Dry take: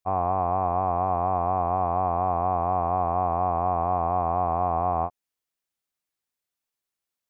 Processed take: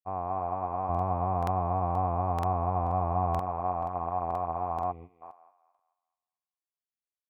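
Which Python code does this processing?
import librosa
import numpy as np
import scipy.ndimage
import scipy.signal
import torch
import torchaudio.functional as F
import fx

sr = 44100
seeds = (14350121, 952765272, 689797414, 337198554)

y = fx.low_shelf(x, sr, hz=220.0, db=10.5, at=(0.89, 3.39))
y = fx.echo_thinned(y, sr, ms=217, feedback_pct=44, hz=670.0, wet_db=-4.5)
y = fx.spec_box(y, sr, start_s=4.92, length_s=0.3, low_hz=500.0, high_hz=1900.0, gain_db=-21)
y = fx.buffer_crackle(y, sr, first_s=0.9, period_s=0.48, block=2048, kind='repeat')
y = fx.upward_expand(y, sr, threshold_db=-43.0, expansion=1.5)
y = F.gain(torch.from_numpy(y), -6.0).numpy()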